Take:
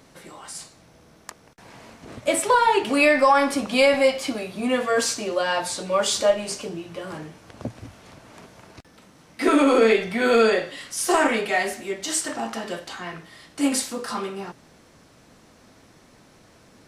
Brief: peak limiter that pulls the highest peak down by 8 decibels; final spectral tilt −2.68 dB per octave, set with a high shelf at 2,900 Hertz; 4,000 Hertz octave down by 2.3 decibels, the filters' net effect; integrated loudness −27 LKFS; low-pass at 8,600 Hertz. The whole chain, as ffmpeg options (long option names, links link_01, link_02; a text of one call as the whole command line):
ffmpeg -i in.wav -af "lowpass=8600,highshelf=frequency=2900:gain=7,equalizer=frequency=4000:width_type=o:gain=-9,volume=-2dB,alimiter=limit=-16dB:level=0:latency=1" out.wav